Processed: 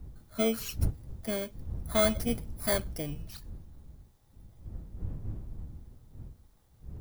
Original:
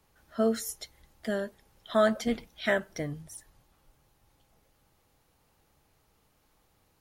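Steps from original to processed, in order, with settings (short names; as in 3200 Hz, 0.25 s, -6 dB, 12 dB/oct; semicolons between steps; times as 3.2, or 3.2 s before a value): FFT order left unsorted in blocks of 16 samples; wind noise 87 Hz -37 dBFS; gain -2 dB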